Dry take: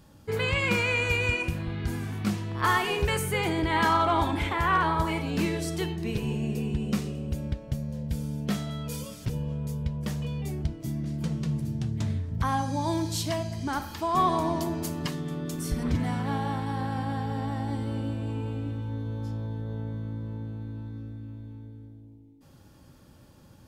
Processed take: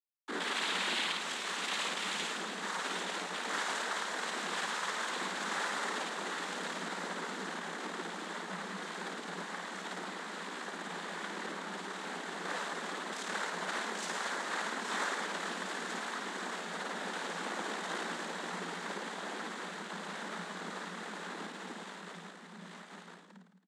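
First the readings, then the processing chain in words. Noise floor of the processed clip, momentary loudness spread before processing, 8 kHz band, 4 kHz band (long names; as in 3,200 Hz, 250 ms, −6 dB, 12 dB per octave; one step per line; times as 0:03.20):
−51 dBFS, 10 LU, −1.0 dB, −0.5 dB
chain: comparator with hysteresis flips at −36 dBFS
repeating echo 838 ms, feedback 16%, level −11 dB
sine wavefolder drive 17 dB, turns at −22 dBFS
downward compressor 6 to 1, threshold −36 dBFS, peak gain reduction 11.5 dB
frequency shifter −98 Hz
parametric band 1,300 Hz +9.5 dB 1.5 octaves
flutter between parallel walls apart 9.3 metres, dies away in 0.96 s
cochlear-implant simulation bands 6
Chebyshev high-pass filter 170 Hz, order 10
high-shelf EQ 4,500 Hz +9 dB
level −6 dB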